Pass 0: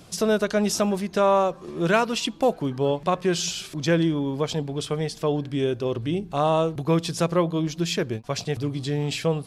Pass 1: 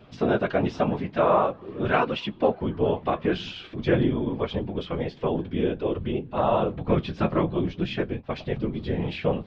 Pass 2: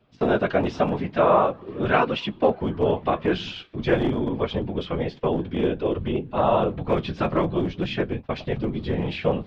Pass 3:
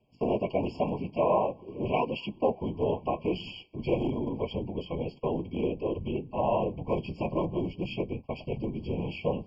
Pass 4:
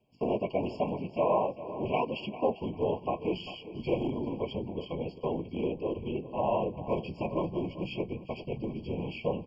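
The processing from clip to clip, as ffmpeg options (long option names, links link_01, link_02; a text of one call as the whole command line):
ffmpeg -i in.wav -af "afftfilt=real='hypot(re,im)*cos(2*PI*random(0))':imag='hypot(re,im)*sin(2*PI*random(1))':win_size=512:overlap=0.75,lowpass=frequency=3200:width=0.5412,lowpass=frequency=3200:width=1.3066,flanger=delay=8:depth=4.4:regen=-45:speed=0.48:shape=sinusoidal,volume=8.5dB" out.wav
ffmpeg -i in.wav -filter_complex "[0:a]agate=range=-15dB:threshold=-39dB:ratio=16:detection=peak,acrossover=split=330[link_01][link_02];[link_01]aeval=exprs='0.0631*(abs(mod(val(0)/0.0631+3,4)-2)-1)':channel_layout=same[link_03];[link_03][link_02]amix=inputs=2:normalize=0,volume=2.5dB" out.wav
ffmpeg -i in.wav -af "afftfilt=real='re*eq(mod(floor(b*sr/1024/1100),2),0)':imag='im*eq(mod(floor(b*sr/1024/1100),2),0)':win_size=1024:overlap=0.75,volume=-6.5dB" out.wav
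ffmpeg -i in.wav -af "lowshelf=frequency=93:gain=-5.5,aecho=1:1:397|794|1191:0.188|0.0527|0.0148,volume=-1.5dB" out.wav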